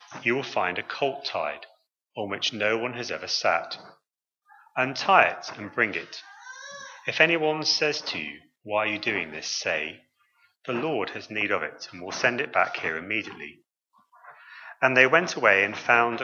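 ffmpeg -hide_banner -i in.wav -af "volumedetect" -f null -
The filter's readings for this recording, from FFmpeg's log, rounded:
mean_volume: -27.1 dB
max_volume: -1.9 dB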